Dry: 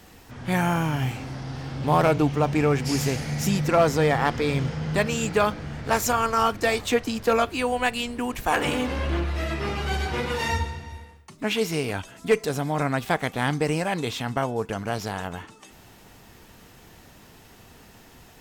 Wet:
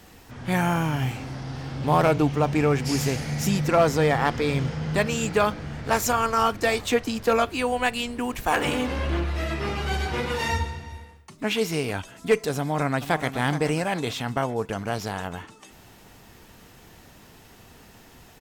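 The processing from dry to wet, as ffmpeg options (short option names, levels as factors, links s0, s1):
-filter_complex "[0:a]asettb=1/sr,asplit=3[s0][s1][s2];[s0]atrim=end=8.254[s3];[s1]atrim=start=8.25:end=8.69,asetpts=PTS-STARTPTS,afade=t=in:d=0.004:c=qsin,afade=t=out:st=0.436:d=0.004:c=qsin,acrusher=bits=8:mode=log:mix=0:aa=0.000001[s4];[s2]atrim=start=8.686[s5];[s3][s4]acrossfade=d=0.004:c1=hsin:c2=qsin[s6];[s6][s5]acrossfade=d=0.004:c1=qsin:c2=hsin,asplit=2[s7][s8];[s8]afade=t=in:st=12.59:d=0.01,afade=t=out:st=13.29:d=0.01,aecho=0:1:420|840|1260|1680|2100:0.266073|0.119733|0.0538797|0.0242459|0.0109106[s9];[s7][s9]amix=inputs=2:normalize=0"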